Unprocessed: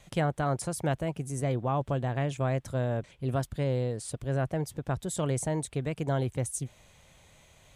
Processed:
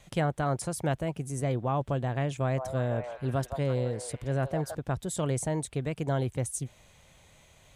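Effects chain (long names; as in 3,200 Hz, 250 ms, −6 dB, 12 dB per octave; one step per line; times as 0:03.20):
0:02.40–0:04.75: echo through a band-pass that steps 166 ms, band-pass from 790 Hz, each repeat 0.7 octaves, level −3.5 dB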